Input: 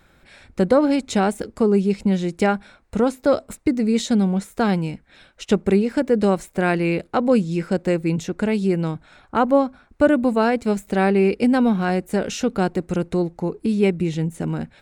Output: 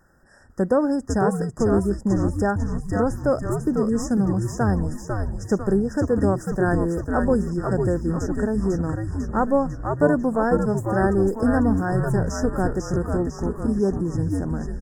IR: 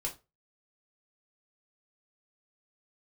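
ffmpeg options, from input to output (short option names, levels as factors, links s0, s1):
-filter_complex "[0:a]asplit=9[s0][s1][s2][s3][s4][s5][s6][s7][s8];[s1]adelay=498,afreqshift=-110,volume=0.631[s9];[s2]adelay=996,afreqshift=-220,volume=0.359[s10];[s3]adelay=1494,afreqshift=-330,volume=0.204[s11];[s4]adelay=1992,afreqshift=-440,volume=0.117[s12];[s5]adelay=2490,afreqshift=-550,volume=0.0668[s13];[s6]adelay=2988,afreqshift=-660,volume=0.038[s14];[s7]adelay=3486,afreqshift=-770,volume=0.0216[s15];[s8]adelay=3984,afreqshift=-880,volume=0.0123[s16];[s0][s9][s10][s11][s12][s13][s14][s15][s16]amix=inputs=9:normalize=0,afftfilt=real='re*(1-between(b*sr/4096,1900,4900))':imag='im*(1-between(b*sr/4096,1900,4900))':win_size=4096:overlap=0.75,volume=0.668"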